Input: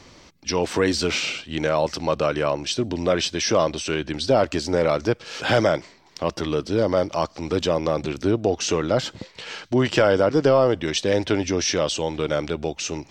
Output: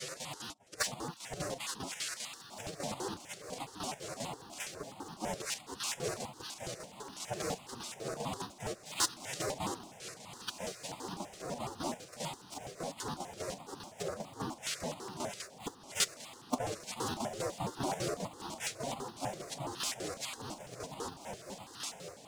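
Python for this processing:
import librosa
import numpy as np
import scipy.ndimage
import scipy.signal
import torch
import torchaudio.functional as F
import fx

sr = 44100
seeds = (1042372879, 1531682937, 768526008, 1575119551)

p1 = fx.rattle_buzz(x, sr, strikes_db=-32.0, level_db=-25.0)
p2 = fx.high_shelf(p1, sr, hz=3300.0, db=7.0)
p3 = fx.noise_vocoder(p2, sr, seeds[0], bands=2)
p4 = fx.quant_dither(p3, sr, seeds[1], bits=6, dither='none')
p5 = p3 + F.gain(torch.from_numpy(p4), -10.5).numpy()
p6 = np.clip(p5, -10.0 ** (-10.5 / 20.0), 10.0 ** (-10.5 / 20.0))
p7 = fx.gate_flip(p6, sr, shuts_db=-21.0, range_db=-24)
p8 = fx.stretch_vocoder(p7, sr, factor=1.7)
p9 = fx.chopper(p8, sr, hz=5.0, depth_pct=65, duty_pct=70)
p10 = fx.echo_diffused(p9, sr, ms=1722, feedback_pct=51, wet_db=-14.5)
p11 = fx.phaser_held(p10, sr, hz=12.0, low_hz=250.0, high_hz=2200.0)
y = F.gain(torch.from_numpy(p11), 7.5).numpy()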